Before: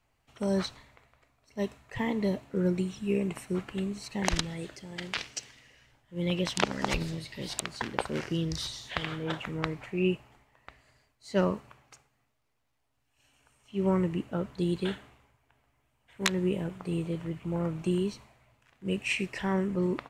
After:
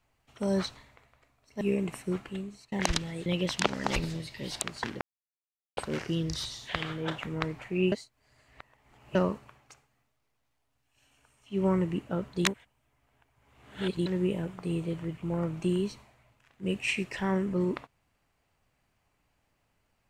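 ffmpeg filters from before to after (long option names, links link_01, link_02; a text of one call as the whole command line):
ffmpeg -i in.wav -filter_complex "[0:a]asplit=9[link_01][link_02][link_03][link_04][link_05][link_06][link_07][link_08][link_09];[link_01]atrim=end=1.612[link_10];[link_02]atrim=start=3.038:end=4.15,asetpts=PTS-STARTPTS,afade=type=out:start_time=0.522:duration=0.59:silence=0.0794328[link_11];[link_03]atrim=start=4.15:end=4.692,asetpts=PTS-STARTPTS,afade=type=in:duration=0.004:curve=hsin:silence=0.0794328[link_12];[link_04]atrim=start=6.238:end=7.99,asetpts=PTS-STARTPTS,afade=type=out:start_time=1.748:duration=0.004:curve=hsin,apad=pad_dur=0.76[link_13];[link_05]atrim=start=7.99:end=10.142,asetpts=PTS-STARTPTS,afade=type=in:duration=0.004:curve=hsin[link_14];[link_06]atrim=start=10.138:end=11.372,asetpts=PTS-STARTPTS,areverse[link_15];[link_07]atrim=start=11.368:end=14.672[link_16];[link_08]atrim=start=14.668:end=16.282,asetpts=PTS-STARTPTS,areverse[link_17];[link_09]atrim=start=16.278[link_18];[link_11][link_12]concat=n=2:v=0:a=1[link_19];[link_10][link_19]acrossfade=duration=0.004:curve1=hsin:curve2=hsin[link_20];[link_13][link_14]concat=n=2:v=0:a=1[link_21];[link_20][link_21]acrossfade=duration=0.004:curve1=hsin:curve2=hsin[link_22];[link_22][link_15]acrossfade=duration=0.004:curve1=hsin:curve2=hsin[link_23];[link_23][link_16]acrossfade=duration=0.004:curve1=hsin:curve2=hsin[link_24];[link_24][link_17]acrossfade=duration=0.004:curve1=hsin:curve2=hsin[link_25];[link_25][link_18]acrossfade=duration=0.004:curve1=hsin:curve2=hsin" out.wav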